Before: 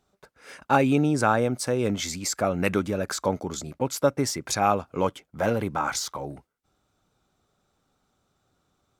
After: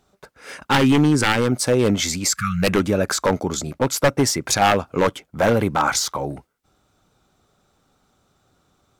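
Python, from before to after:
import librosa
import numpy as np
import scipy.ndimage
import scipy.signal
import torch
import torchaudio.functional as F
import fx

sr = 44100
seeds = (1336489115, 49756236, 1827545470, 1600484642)

y = fx.spec_erase(x, sr, start_s=2.33, length_s=0.3, low_hz=210.0, high_hz=1100.0)
y = 10.0 ** (-16.5 / 20.0) * (np.abs((y / 10.0 ** (-16.5 / 20.0) + 3.0) % 4.0 - 2.0) - 1.0)
y = fx.peak_eq(y, sr, hz=640.0, db=-14.0, octaves=0.39, at=(0.67, 1.52))
y = y * 10.0 ** (8.0 / 20.0)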